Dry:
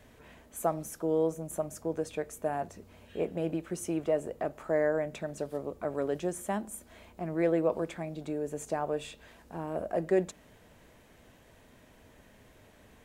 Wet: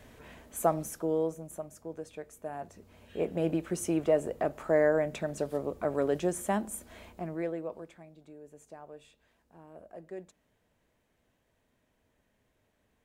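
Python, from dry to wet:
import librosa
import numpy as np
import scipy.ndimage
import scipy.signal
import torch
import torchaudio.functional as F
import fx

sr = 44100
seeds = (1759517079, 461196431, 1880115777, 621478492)

y = fx.gain(x, sr, db=fx.line((0.79, 3.0), (1.71, -8.0), (2.42, -8.0), (3.45, 3.0), (7.08, 3.0), (7.54, -9.0), (8.19, -16.0)))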